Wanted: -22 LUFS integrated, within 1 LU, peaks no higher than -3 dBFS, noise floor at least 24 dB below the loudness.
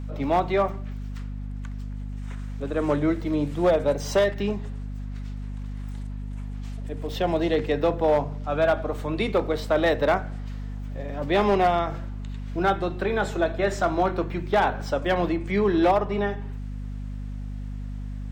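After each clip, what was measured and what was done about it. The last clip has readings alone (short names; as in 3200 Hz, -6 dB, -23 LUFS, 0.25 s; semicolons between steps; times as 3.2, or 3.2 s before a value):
clipped 0.7%; flat tops at -14.0 dBFS; hum 50 Hz; harmonics up to 250 Hz; hum level -30 dBFS; loudness -25.5 LUFS; peak -14.0 dBFS; loudness target -22.0 LUFS
-> clip repair -14 dBFS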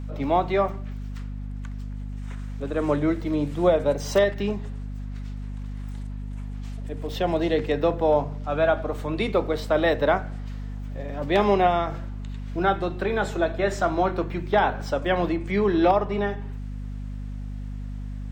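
clipped 0.0%; hum 50 Hz; harmonics up to 250 Hz; hum level -30 dBFS
-> notches 50/100/150/200/250 Hz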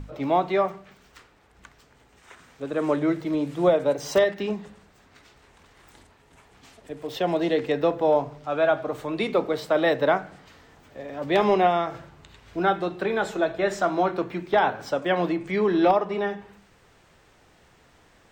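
hum none; loudness -24.5 LUFS; peak -6.5 dBFS; loudness target -22.0 LUFS
-> gain +2.5 dB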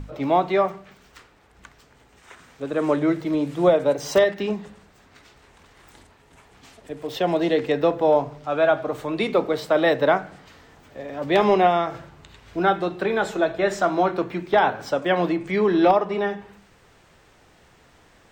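loudness -22.0 LUFS; peak -4.0 dBFS; noise floor -56 dBFS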